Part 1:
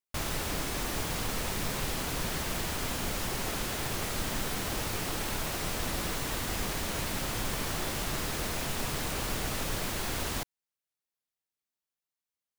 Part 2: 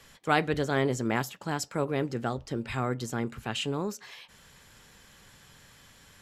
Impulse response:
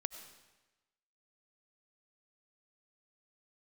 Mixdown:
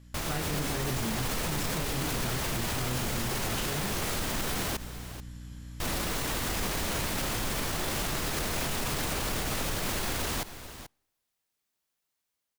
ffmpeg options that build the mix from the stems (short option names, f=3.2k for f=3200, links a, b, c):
-filter_complex "[0:a]volume=-0.5dB,asplit=3[a][b][c];[a]atrim=end=4.77,asetpts=PTS-STARTPTS,afade=t=out:st=4.766:d=0.004:c=hsin[d];[b]atrim=start=4.77:end=5.8,asetpts=PTS-STARTPTS,volume=0[e];[c]atrim=start=5.8,asetpts=PTS-STARTPTS,afade=t=in:d=0.004:c=hsin[f];[d][e][f]concat=n=3:v=0:a=1,asplit=3[g][h][i];[h]volume=-21dB[j];[i]volume=-19.5dB[k];[1:a]bass=f=250:g=13,treble=f=4k:g=4,flanger=delay=22.5:depth=4:speed=0.94,aeval=exprs='val(0)+0.00891*(sin(2*PI*60*n/s)+sin(2*PI*2*60*n/s)/2+sin(2*PI*3*60*n/s)/3+sin(2*PI*4*60*n/s)/4+sin(2*PI*5*60*n/s)/5)':c=same,volume=-12.5dB,asplit=2[l][m];[m]volume=-9dB[n];[2:a]atrim=start_sample=2205[o];[j][n]amix=inputs=2:normalize=0[p];[p][o]afir=irnorm=-1:irlink=0[q];[k]aecho=0:1:434:1[r];[g][l][q][r]amix=inputs=4:normalize=0,dynaudnorm=f=120:g=11:m=9dB,alimiter=limit=-22dB:level=0:latency=1"